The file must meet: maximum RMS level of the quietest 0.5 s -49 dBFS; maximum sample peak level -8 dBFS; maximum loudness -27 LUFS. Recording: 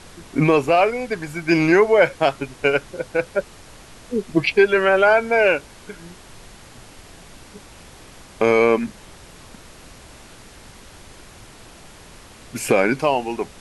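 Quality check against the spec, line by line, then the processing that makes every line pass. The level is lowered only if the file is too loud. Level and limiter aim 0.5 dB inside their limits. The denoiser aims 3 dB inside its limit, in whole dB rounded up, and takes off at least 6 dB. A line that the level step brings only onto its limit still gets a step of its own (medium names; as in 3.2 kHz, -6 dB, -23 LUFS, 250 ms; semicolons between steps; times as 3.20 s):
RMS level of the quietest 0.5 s -43 dBFS: fail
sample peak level -4.5 dBFS: fail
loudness -18.5 LUFS: fail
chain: trim -9 dB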